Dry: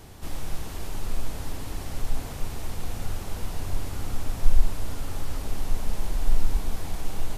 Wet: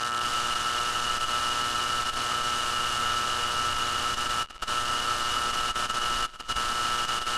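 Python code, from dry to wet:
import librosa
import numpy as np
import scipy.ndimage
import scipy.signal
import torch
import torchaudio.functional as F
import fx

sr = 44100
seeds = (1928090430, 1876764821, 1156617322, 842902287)

y = fx.delta_mod(x, sr, bps=64000, step_db=-32.5)
y = fx.dmg_buzz(y, sr, base_hz=120.0, harmonics=15, level_db=-39.0, tilt_db=-2, odd_only=False)
y = fx.over_compress(y, sr, threshold_db=-19.0, ratio=-0.5)
y = fx.tilt_eq(y, sr, slope=4.5)
y = fx.dmg_crackle(y, sr, seeds[0], per_s=170.0, level_db=-31.0)
y = scipy.signal.sosfilt(scipy.signal.butter(2, 4800.0, 'lowpass', fs=sr, output='sos'), y)
y = fx.low_shelf(y, sr, hz=120.0, db=4.5)
y = fx.small_body(y, sr, hz=(1300.0, 2900.0), ring_ms=35, db=18)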